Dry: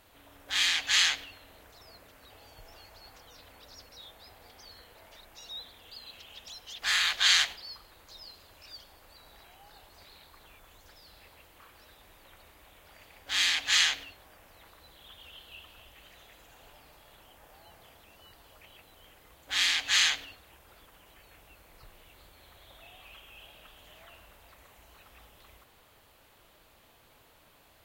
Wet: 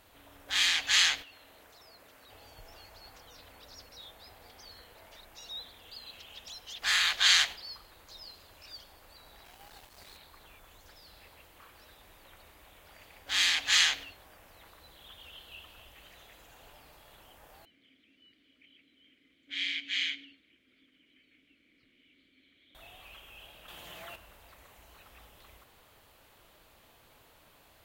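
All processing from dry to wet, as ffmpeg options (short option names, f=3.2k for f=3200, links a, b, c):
-filter_complex "[0:a]asettb=1/sr,asplit=3[a][b][c];[a]atrim=end=1.224[d];[b]atrim=start=1.22:end=2.29,asetpts=PTS-STARTPTS,afade=t=in:d=0.004:c=qsin,afade=t=out:st=1.066:d=0.004:c=qsin,lowshelf=f=140:g=-10,acompressor=threshold=-53dB:ratio=2:attack=3.2:release=140:knee=1:detection=peak[e];[c]atrim=start=2.286[f];[d][e]acrossfade=d=0.004:c1=hsin:c2=qsin[g];[g][f]acrossfade=d=0.004:c1=qsin:c2=hsin,asettb=1/sr,asplit=3[h][i][j];[h]atrim=end=9.454[k];[i]atrim=start=9.45:end=10.17,asetpts=PTS-STARTPTS,afade=t=in:d=0.004:c=qsin,afade=t=out:st=0.716:d=0.004:c=qsin,aeval=exprs='val(0)+0.5*0.00178*sgn(val(0))':c=same,acrusher=bits=7:mix=0:aa=0.5[l];[j]atrim=start=10.166[m];[k][l]acrossfade=d=0.004:c1=hsin:c2=qsin[n];[n][m]acrossfade=d=0.004:c1=qsin:c2=hsin,asettb=1/sr,asplit=3[o][p][q];[o]atrim=end=17.654[r];[p]atrim=start=17.65:end=22.75,asetpts=PTS-STARTPTS,afade=t=in:d=0.004:c=qsin,afade=t=out:st=5.096:d=0.004:c=qsin,acontrast=28,asplit=3[s][t][u];[s]bandpass=f=270:t=q:w=8,volume=0dB[v];[t]bandpass=f=2.29k:t=q:w=8,volume=-6dB[w];[u]bandpass=f=3.01k:t=q:w=8,volume=-9dB[x];[v][w][x]amix=inputs=3:normalize=0[y];[q]atrim=start=22.746[z];[r][y]acrossfade=d=0.004:c1=hsin:c2=qsin[aa];[aa][z]acrossfade=d=0.004:c1=qsin:c2=hsin,asettb=1/sr,asplit=3[ab][ac][ad];[ab]atrim=end=23.684[ae];[ac]atrim=start=23.68:end=24.16,asetpts=PTS-STARTPTS,afade=t=in:d=0.004:c=qsin,afade=t=out:st=0.476:d=0.004:c=qsin,aecho=1:1:5.8:0.38,atrim=end_sample=21168,acontrast=76,highpass=67[af];[ad]atrim=start=24.156[ag];[ae][af]acrossfade=d=0.004:c1=hsin:c2=qsin[ah];[ah][ag]acrossfade=d=0.004:c1=qsin:c2=hsin"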